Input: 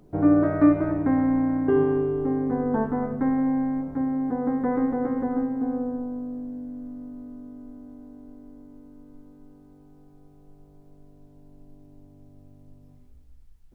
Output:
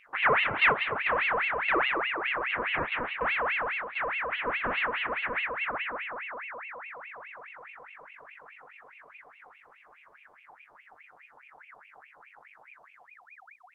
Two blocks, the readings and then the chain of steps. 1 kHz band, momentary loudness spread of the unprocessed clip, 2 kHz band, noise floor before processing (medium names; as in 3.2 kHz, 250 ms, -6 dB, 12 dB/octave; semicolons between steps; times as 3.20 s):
+3.5 dB, 19 LU, +16.0 dB, -52 dBFS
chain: self-modulated delay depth 0.12 ms; low-pass that closes with the level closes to 1.8 kHz, closed at -22.5 dBFS; ring modulator with a swept carrier 1.6 kHz, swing 55%, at 4.8 Hz; trim -3 dB